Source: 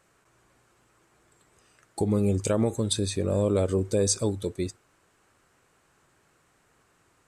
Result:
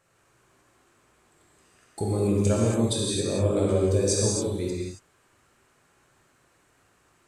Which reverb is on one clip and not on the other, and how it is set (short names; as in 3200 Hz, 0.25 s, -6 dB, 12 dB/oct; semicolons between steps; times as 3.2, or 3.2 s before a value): non-linear reverb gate 0.3 s flat, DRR -4.5 dB; gain -4 dB